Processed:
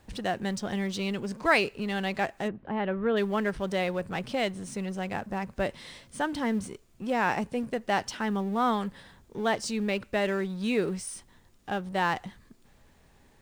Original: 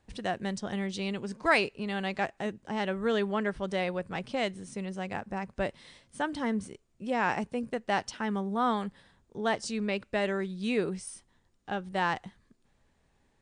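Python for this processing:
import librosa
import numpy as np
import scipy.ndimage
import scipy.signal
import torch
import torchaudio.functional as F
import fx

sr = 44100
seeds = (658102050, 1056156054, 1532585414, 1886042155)

y = fx.law_mismatch(x, sr, coded='mu')
y = fx.gaussian_blur(y, sr, sigma=3.2, at=(2.47, 3.16), fade=0.02)
y = y * 10.0 ** (1.0 / 20.0)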